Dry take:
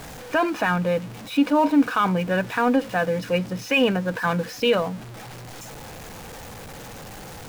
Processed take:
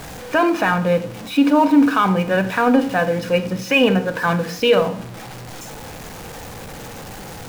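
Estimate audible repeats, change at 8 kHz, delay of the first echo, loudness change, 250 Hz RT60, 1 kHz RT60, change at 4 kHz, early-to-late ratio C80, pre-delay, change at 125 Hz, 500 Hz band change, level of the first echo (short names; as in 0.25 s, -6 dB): none, +4.0 dB, none, +5.0 dB, 0.50 s, 0.55 s, +4.5 dB, 15.5 dB, 23 ms, +4.0 dB, +5.0 dB, none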